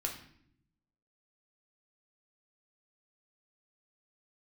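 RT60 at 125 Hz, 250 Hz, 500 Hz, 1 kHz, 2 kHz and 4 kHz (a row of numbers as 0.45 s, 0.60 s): 1.2 s, 1.1 s, 0.80 s, 0.60 s, 0.65 s, 0.55 s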